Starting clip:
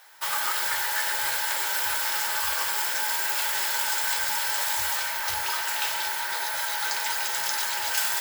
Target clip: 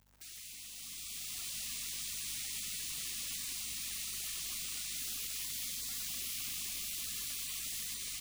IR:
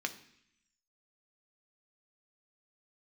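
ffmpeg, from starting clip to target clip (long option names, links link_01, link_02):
-filter_complex "[0:a]equalizer=frequency=250:width_type=o:width=1:gain=10,equalizer=frequency=500:width_type=o:width=1:gain=11,equalizer=frequency=2000:width_type=o:width=1:gain=-8,equalizer=frequency=4000:width_type=o:width=1:gain=-12,equalizer=frequency=8000:width_type=o:width=1:gain=-11,asplit=2[link_01][link_02];[link_02]adelay=108,lowpass=frequency=1700:poles=1,volume=-13dB,asplit=2[link_03][link_04];[link_04]adelay=108,lowpass=frequency=1700:poles=1,volume=0.29,asplit=2[link_05][link_06];[link_06]adelay=108,lowpass=frequency=1700:poles=1,volume=0.29[link_07];[link_01][link_03][link_05][link_07]amix=inputs=4:normalize=0,asplit=2[link_08][link_09];[1:a]atrim=start_sample=2205,adelay=76[link_10];[link_09][link_10]afir=irnorm=-1:irlink=0,volume=-11dB[link_11];[link_08][link_11]amix=inputs=2:normalize=0,acompressor=threshold=-33dB:ratio=2.5,aeval=exprs='sgn(val(0))*max(abs(val(0))-0.00422,0)':channel_layout=same,equalizer=frequency=82:width_type=o:width=1.2:gain=14,afftfilt=real='re*lt(hypot(re,im),0.00447)':imag='im*lt(hypot(re,im),0.00447)':win_size=1024:overlap=0.75,aeval=exprs='val(0)+0.000224*(sin(2*PI*50*n/s)+sin(2*PI*2*50*n/s)/2+sin(2*PI*3*50*n/s)/3+sin(2*PI*4*50*n/s)/4+sin(2*PI*5*50*n/s)/5)':channel_layout=same,dynaudnorm=framelen=750:gausssize=3:maxgain=9.5dB,volume=3.5dB"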